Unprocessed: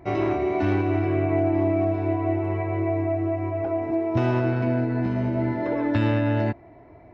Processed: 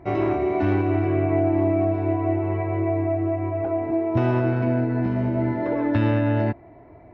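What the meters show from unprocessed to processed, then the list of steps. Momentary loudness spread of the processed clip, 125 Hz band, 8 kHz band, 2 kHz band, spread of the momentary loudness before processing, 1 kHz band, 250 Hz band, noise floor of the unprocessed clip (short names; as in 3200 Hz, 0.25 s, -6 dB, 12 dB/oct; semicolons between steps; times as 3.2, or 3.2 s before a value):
4 LU, +1.5 dB, n/a, -0.5 dB, 4 LU, +1.0 dB, +1.5 dB, -48 dBFS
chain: high shelf 4200 Hz -11 dB; gain +1.5 dB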